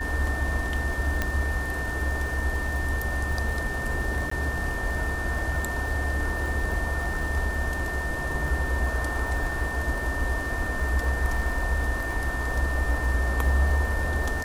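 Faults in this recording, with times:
surface crackle 110 per second −34 dBFS
whistle 1,800 Hz −31 dBFS
0:01.22: click −11 dBFS
0:04.30–0:04.31: drop-out 14 ms

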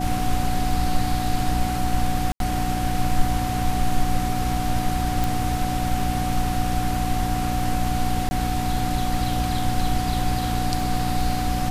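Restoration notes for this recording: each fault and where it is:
surface crackle 21 per second −30 dBFS
mains hum 60 Hz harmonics 5 −27 dBFS
whistle 740 Hz −27 dBFS
0:02.32–0:02.40: drop-out 82 ms
0:05.24: click
0:08.29–0:08.31: drop-out 20 ms

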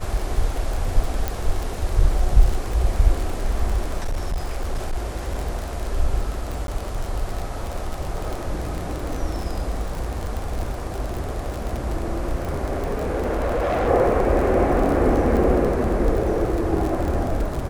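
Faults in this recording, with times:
surface crackle 44 per second −24 dBFS
0:01.28: click −9 dBFS
0:04.03–0:05.37: clipping −19.5 dBFS
0:06.67–0:06.68: drop-out
0:12.75–0:13.89: clipping −18.5 dBFS

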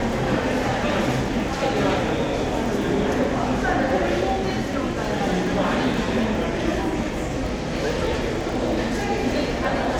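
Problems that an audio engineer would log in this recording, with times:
surface crackle 15 per second −29 dBFS

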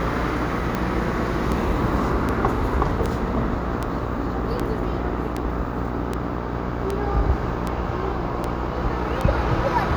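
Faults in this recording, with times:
mains buzz 60 Hz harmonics 22 −28 dBFS
scratch tick 78 rpm −11 dBFS

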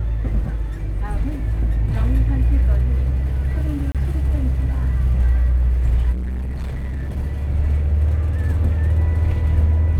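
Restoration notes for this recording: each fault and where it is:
0:03.92–0:03.95: drop-out 27 ms
0:06.12–0:07.18: clipping −22 dBFS

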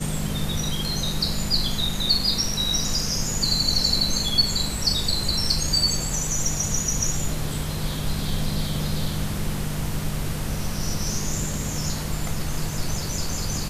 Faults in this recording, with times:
0:04.77: drop-out 2.1 ms

